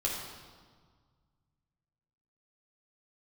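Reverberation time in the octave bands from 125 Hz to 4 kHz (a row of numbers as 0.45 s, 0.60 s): 2.8 s, 2.0 s, 1.6 s, 1.7 s, 1.3 s, 1.3 s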